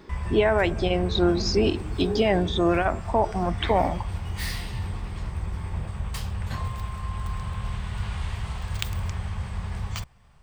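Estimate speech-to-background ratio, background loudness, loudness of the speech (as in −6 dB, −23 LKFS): 8.5 dB, −32.5 LKFS, −24.0 LKFS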